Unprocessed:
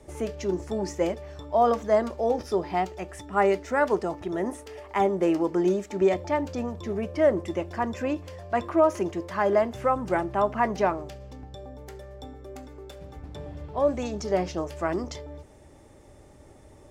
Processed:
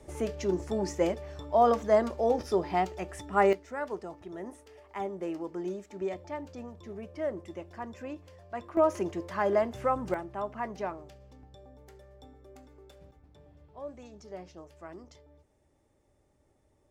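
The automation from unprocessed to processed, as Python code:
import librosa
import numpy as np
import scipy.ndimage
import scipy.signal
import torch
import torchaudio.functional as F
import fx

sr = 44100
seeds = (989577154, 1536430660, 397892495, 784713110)

y = fx.gain(x, sr, db=fx.steps((0.0, -1.5), (3.53, -12.0), (8.77, -4.0), (10.14, -11.0), (13.11, -18.0)))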